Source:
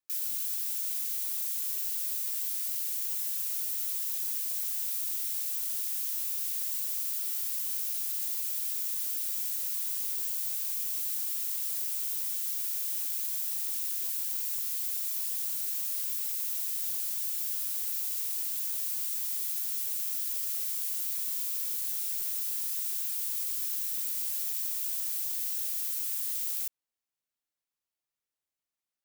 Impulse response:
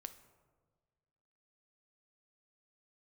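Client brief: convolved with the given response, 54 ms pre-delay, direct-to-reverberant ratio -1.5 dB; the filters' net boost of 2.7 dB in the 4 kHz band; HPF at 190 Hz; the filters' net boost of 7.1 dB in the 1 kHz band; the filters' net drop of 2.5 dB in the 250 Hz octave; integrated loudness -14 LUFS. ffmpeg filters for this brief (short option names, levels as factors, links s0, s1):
-filter_complex "[0:a]highpass=190,equalizer=f=250:t=o:g=-3,equalizer=f=1000:t=o:g=9,equalizer=f=4000:t=o:g=3,asplit=2[s0][s1];[1:a]atrim=start_sample=2205,adelay=54[s2];[s1][s2]afir=irnorm=-1:irlink=0,volume=2.11[s3];[s0][s3]amix=inputs=2:normalize=0,volume=3.76"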